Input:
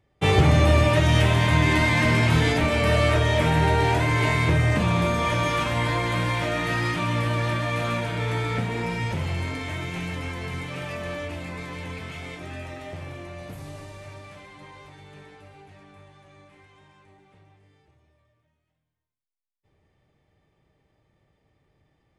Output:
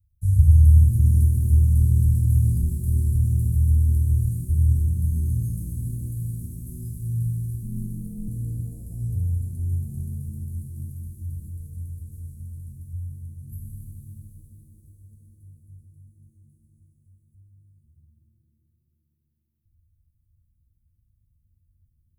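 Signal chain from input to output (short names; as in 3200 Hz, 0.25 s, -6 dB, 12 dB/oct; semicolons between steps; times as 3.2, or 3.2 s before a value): inverse Chebyshev band-stop 360–3400 Hz, stop band 70 dB; 7.63–8.28 ring modulator 94 Hz; shimmer reverb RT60 3.4 s, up +7 st, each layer -8 dB, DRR 2.5 dB; gain +7.5 dB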